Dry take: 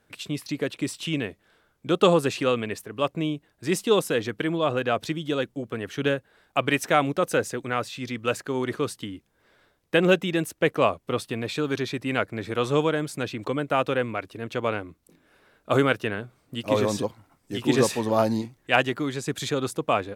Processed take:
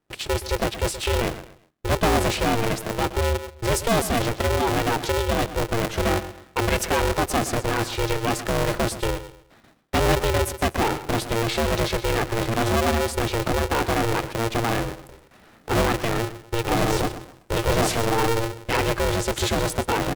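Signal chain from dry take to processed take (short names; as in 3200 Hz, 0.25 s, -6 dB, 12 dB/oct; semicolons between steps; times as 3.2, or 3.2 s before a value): gate with hold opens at -50 dBFS; low shelf 250 Hz +11.5 dB; in parallel at -1.5 dB: negative-ratio compressor -27 dBFS, ratio -1; on the sum: hard clip -13 dBFS, distortion -13 dB; on a send: feedback echo 0.123 s, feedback 30%, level -13 dB; on the sum: polarity switched at an audio rate 230 Hz; gain -3 dB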